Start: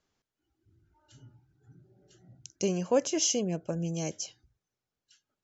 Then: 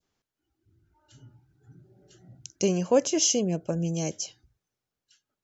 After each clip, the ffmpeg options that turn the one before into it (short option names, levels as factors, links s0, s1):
-af "adynamicequalizer=threshold=0.00447:dfrequency=1500:dqfactor=0.8:tfrequency=1500:tqfactor=0.8:attack=5:release=100:ratio=0.375:range=2.5:mode=cutabove:tftype=bell,dynaudnorm=f=300:g=9:m=1.68"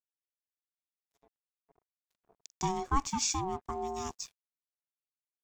-af "aeval=exprs='sgn(val(0))*max(abs(val(0))-0.00376,0)':c=same,aeval=exprs='val(0)*sin(2*PI*560*n/s)':c=same,volume=0.596"